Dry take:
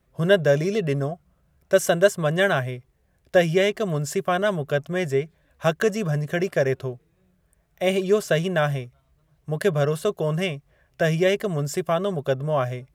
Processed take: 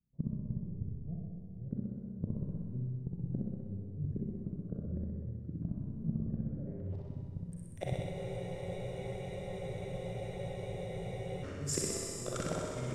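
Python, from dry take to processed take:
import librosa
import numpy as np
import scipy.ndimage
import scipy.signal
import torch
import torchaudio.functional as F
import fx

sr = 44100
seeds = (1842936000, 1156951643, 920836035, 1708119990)

p1 = fx.law_mismatch(x, sr, coded='A')
p2 = fx.level_steps(p1, sr, step_db=23)
p3 = fx.gate_flip(p2, sr, shuts_db=-28.0, range_db=-37)
p4 = fx.filter_sweep_lowpass(p3, sr, from_hz=200.0, to_hz=8900.0, start_s=6.49, end_s=7.06, q=1.9)
p5 = fx.rev_schroeder(p4, sr, rt60_s=2.1, comb_ms=32, drr_db=-0.5)
p6 = fx.echo_pitch(p5, sr, ms=247, semitones=-4, count=2, db_per_echo=-3.0)
p7 = p6 + fx.room_flutter(p6, sr, wall_m=10.8, rt60_s=1.5, dry=0)
p8 = fx.spec_freeze(p7, sr, seeds[0], at_s=8.16, hold_s=3.27)
y = p8 * librosa.db_to_amplitude(5.5)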